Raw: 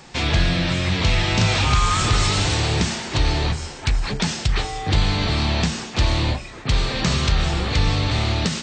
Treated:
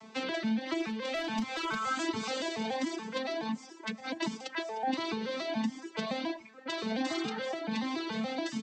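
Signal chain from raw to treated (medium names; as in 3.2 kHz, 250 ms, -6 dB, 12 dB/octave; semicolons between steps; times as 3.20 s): vocoder on a broken chord minor triad, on A3, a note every 142 ms; hum notches 60/120/180/240 Hz; reverb removal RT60 1.8 s; compression 6:1, threshold -24 dBFS, peak gain reduction 10.5 dB; 0.81–1.87 s: overload inside the chain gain 21 dB; 7.11–7.34 s: spectral replace 700–2400 Hz; speakerphone echo 110 ms, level -24 dB; Shepard-style flanger rising 1.4 Hz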